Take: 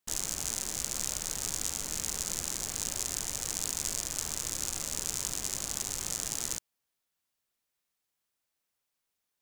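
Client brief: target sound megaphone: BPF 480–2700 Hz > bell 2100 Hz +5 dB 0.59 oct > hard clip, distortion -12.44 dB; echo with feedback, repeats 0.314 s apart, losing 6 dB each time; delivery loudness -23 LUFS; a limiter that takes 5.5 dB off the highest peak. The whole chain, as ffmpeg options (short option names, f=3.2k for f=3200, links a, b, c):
-af "alimiter=limit=-16dB:level=0:latency=1,highpass=480,lowpass=2.7k,equalizer=f=2.1k:t=o:w=0.59:g=5,aecho=1:1:314|628|942|1256|1570|1884:0.501|0.251|0.125|0.0626|0.0313|0.0157,asoftclip=type=hard:threshold=-39.5dB,volume=23.5dB"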